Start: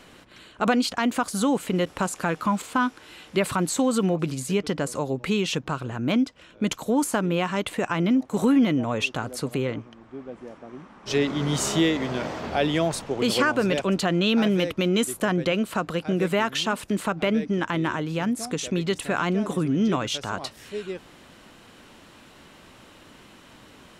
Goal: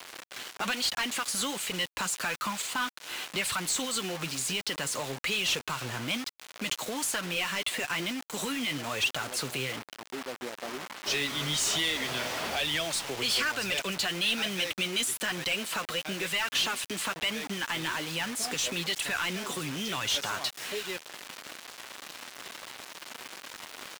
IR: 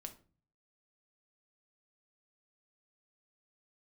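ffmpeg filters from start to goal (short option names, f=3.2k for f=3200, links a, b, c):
-filter_complex "[0:a]flanger=delay=1:depth=7.2:regen=48:speed=1.1:shape=sinusoidal,acrossover=split=110|2100[a][b][c];[b]acompressor=threshold=-42dB:ratio=6[d];[a][d][c]amix=inputs=3:normalize=0,asplit=2[e][f];[f]adelay=297.4,volume=-29dB,highshelf=f=4k:g=-6.69[g];[e][g]amix=inputs=2:normalize=0,acrusher=bits=7:mix=0:aa=0.000001,asplit=2[h][i];[i]highpass=f=720:p=1,volume=19dB,asoftclip=type=tanh:threshold=-19.5dB[j];[h][j]amix=inputs=2:normalize=0,lowpass=f=6.9k:p=1,volume=-6dB"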